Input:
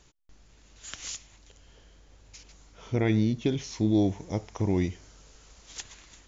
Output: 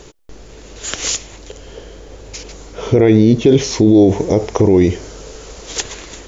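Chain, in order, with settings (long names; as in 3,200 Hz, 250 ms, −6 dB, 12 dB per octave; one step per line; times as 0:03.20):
parametric band 440 Hz +12 dB 1.1 octaves
boost into a limiter +19 dB
level −1 dB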